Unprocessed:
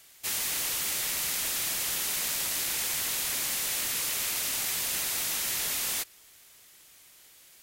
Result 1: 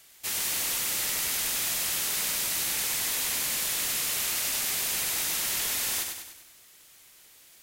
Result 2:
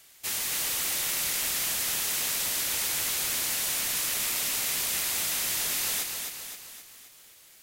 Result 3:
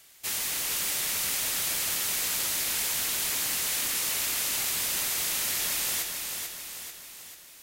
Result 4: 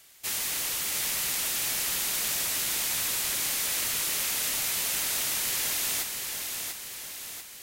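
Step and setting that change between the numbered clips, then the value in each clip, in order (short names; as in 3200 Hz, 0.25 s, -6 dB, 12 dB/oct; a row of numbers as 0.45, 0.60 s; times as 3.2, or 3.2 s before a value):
lo-fi delay, time: 98, 262, 440, 692 ms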